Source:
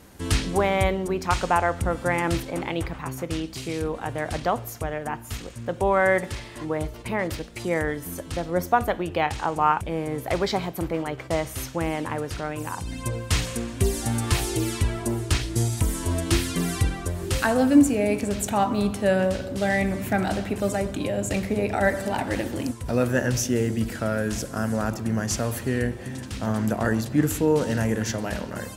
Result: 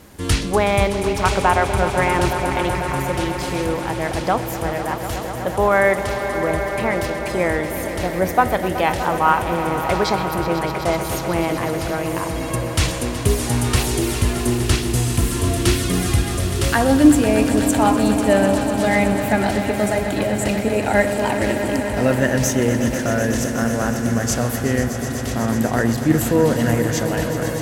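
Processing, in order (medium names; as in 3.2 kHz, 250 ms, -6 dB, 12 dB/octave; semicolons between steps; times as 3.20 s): speed mistake 24 fps film run at 25 fps; echo with a slow build-up 124 ms, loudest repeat 5, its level -13 dB; trim +4.5 dB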